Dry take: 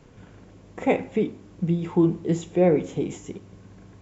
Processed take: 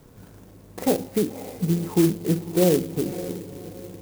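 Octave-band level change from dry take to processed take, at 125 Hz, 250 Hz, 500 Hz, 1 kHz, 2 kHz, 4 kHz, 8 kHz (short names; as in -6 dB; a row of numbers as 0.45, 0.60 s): +1.5 dB, +1.0 dB, 0.0 dB, -2.5 dB, -3.0 dB, +9.0 dB, n/a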